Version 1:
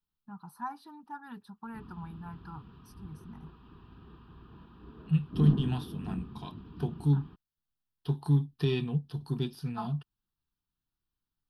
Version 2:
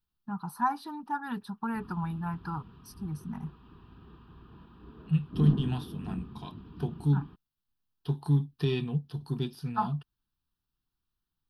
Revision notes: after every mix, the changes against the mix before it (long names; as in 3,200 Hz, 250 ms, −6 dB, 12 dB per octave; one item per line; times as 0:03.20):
first voice +10.0 dB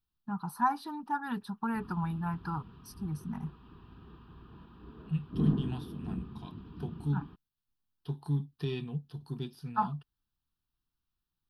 second voice −6.0 dB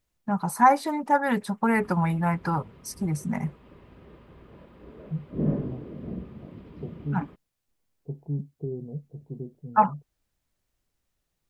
first voice +7.5 dB
second voice: add Gaussian smoothing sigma 16 samples
master: remove phaser with its sweep stopped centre 2,100 Hz, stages 6